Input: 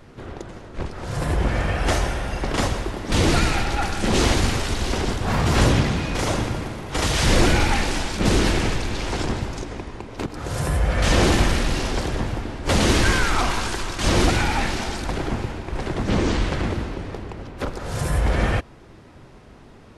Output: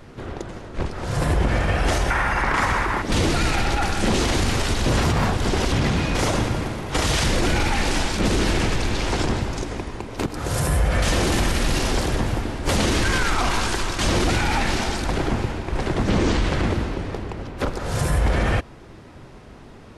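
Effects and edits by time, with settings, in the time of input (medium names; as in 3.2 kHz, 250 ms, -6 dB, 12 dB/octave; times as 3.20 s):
2.10–3.02 s: high-order bell 1.4 kHz +12 dB
4.86–5.72 s: reverse
9.62–12.77 s: treble shelf 11 kHz +11 dB
whole clip: peak limiter -14.5 dBFS; trim +3 dB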